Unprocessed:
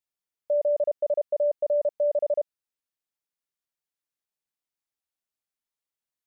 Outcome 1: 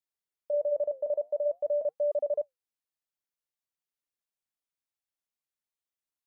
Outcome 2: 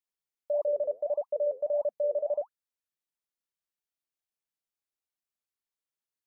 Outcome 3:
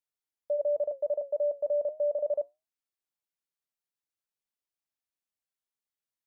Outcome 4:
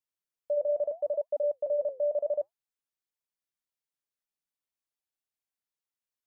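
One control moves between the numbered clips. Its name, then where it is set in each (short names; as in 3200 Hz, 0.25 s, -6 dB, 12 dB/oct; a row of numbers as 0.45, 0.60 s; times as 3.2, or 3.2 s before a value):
flange, rate: 0.47, 1.6, 0.27, 0.75 Hz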